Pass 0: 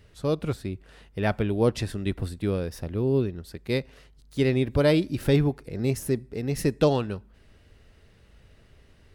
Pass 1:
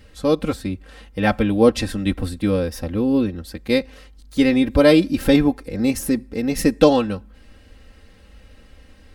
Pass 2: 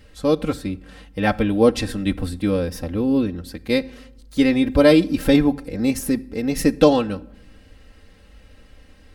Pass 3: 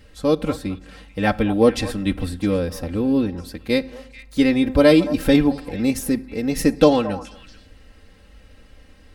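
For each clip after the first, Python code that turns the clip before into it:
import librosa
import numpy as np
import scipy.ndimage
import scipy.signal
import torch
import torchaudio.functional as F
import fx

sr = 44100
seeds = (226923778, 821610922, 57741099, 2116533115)

y1 = x + 0.79 * np.pad(x, (int(3.8 * sr / 1000.0), 0))[:len(x)]
y1 = F.gain(torch.from_numpy(y1), 6.0).numpy()
y2 = fx.room_shoebox(y1, sr, seeds[0], volume_m3=2800.0, walls='furnished', distance_m=0.39)
y2 = F.gain(torch.from_numpy(y2), -1.0).numpy()
y3 = fx.echo_stepped(y2, sr, ms=219, hz=860.0, octaves=1.4, feedback_pct=70, wet_db=-10.0)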